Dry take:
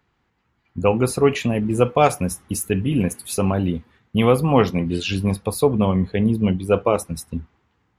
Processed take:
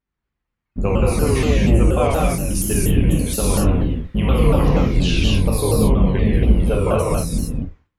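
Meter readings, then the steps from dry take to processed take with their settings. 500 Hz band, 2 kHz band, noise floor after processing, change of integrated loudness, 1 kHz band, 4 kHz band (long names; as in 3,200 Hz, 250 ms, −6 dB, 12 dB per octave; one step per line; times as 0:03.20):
−0.5 dB, +1.0 dB, −81 dBFS, +2.5 dB, −2.0 dB, +4.0 dB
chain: sub-octave generator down 2 octaves, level +4 dB
notch filter 900 Hz, Q 17
noise gate with hold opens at −47 dBFS
downward compressor, threshold −18 dBFS, peak gain reduction 10.5 dB
reverb whose tail is shaped and stops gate 300 ms flat, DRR −6.5 dB
pitch modulation by a square or saw wave saw down 4.2 Hz, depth 160 cents
level −1 dB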